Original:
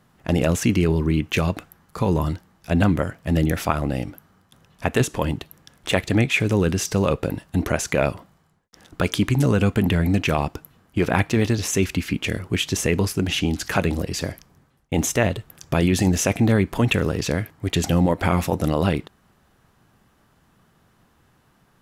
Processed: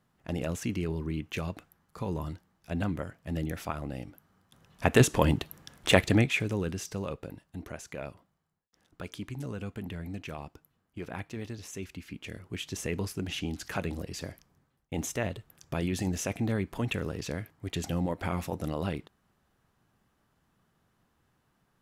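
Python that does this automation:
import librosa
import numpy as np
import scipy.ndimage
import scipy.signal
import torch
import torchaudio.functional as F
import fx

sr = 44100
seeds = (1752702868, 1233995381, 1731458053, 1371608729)

y = fx.gain(x, sr, db=fx.line((4.08, -13.0), (5.0, -0.5), (5.99, -0.5), (6.49, -11.0), (7.57, -19.0), (11.98, -19.0), (12.93, -12.0)))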